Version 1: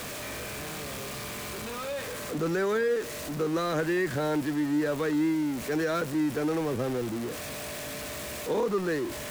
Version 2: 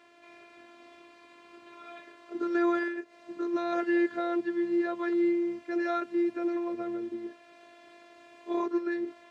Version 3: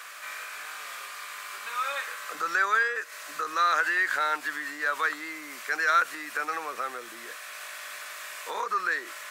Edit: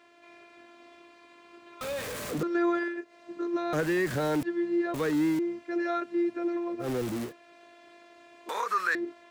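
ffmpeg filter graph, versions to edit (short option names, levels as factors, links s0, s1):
-filter_complex "[0:a]asplit=4[s0][s1][s2][s3];[1:a]asplit=6[s4][s5][s6][s7][s8][s9];[s4]atrim=end=1.812[s10];[s0]atrim=start=1.808:end=2.432[s11];[s5]atrim=start=2.428:end=3.732[s12];[s1]atrim=start=3.728:end=4.432[s13];[s6]atrim=start=4.428:end=4.942[s14];[s2]atrim=start=4.938:end=5.392[s15];[s7]atrim=start=5.388:end=6.89[s16];[s3]atrim=start=6.79:end=7.33[s17];[s8]atrim=start=7.23:end=8.492[s18];[2:a]atrim=start=8.488:end=8.952[s19];[s9]atrim=start=8.948[s20];[s10][s11]acrossfade=d=0.004:c1=hsin:c2=hsin[s21];[s21][s12]acrossfade=d=0.004:c1=hsin:c2=hsin[s22];[s22][s13]acrossfade=d=0.004:c1=hsin:c2=hsin[s23];[s23][s14]acrossfade=d=0.004:c1=hsin:c2=hsin[s24];[s24][s15]acrossfade=d=0.004:c1=hsin:c2=hsin[s25];[s25][s16]acrossfade=d=0.004:c1=hsin:c2=hsin[s26];[s26][s17]acrossfade=d=0.1:c1=tri:c2=tri[s27];[s27][s18]acrossfade=d=0.1:c1=tri:c2=tri[s28];[s28][s19]acrossfade=d=0.004:c1=hsin:c2=hsin[s29];[s29][s20]acrossfade=d=0.004:c1=hsin:c2=hsin"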